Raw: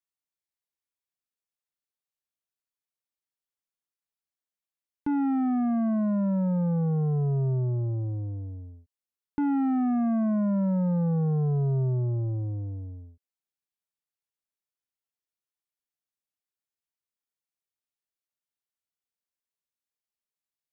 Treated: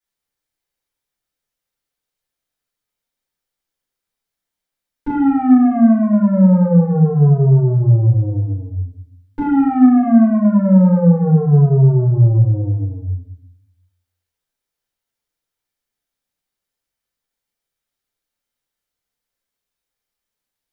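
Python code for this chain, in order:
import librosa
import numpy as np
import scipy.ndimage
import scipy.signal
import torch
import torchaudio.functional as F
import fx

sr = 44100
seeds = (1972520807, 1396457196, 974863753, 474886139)

y = fx.room_shoebox(x, sr, seeds[0], volume_m3=120.0, walls='mixed', distance_m=4.8)
y = F.gain(torch.from_numpy(y), -3.0).numpy()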